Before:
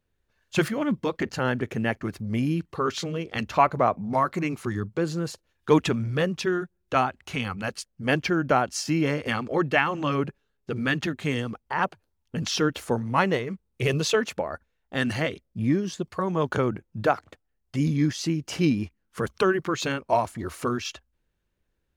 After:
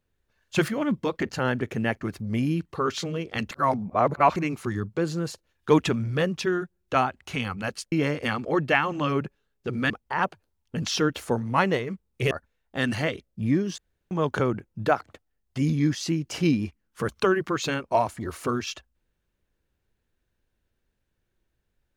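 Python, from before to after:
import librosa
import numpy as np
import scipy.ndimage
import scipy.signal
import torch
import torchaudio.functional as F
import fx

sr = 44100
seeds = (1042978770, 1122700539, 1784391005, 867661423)

y = fx.edit(x, sr, fx.reverse_span(start_s=3.51, length_s=0.85),
    fx.cut(start_s=7.92, length_s=1.03),
    fx.cut(start_s=10.93, length_s=0.57),
    fx.cut(start_s=13.91, length_s=0.58),
    fx.room_tone_fill(start_s=15.96, length_s=0.33), tone=tone)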